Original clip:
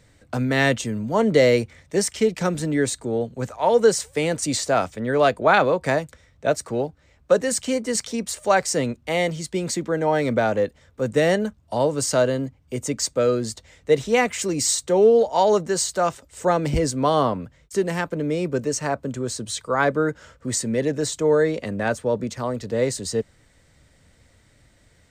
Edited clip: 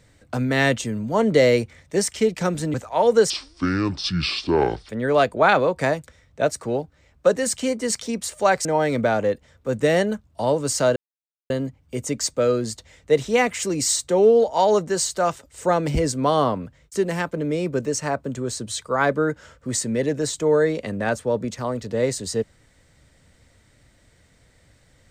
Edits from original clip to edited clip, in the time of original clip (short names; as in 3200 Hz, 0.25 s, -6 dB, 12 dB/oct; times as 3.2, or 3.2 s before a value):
2.74–3.41 cut
3.97–4.94 speed 61%
8.7–9.98 cut
12.29 insert silence 0.54 s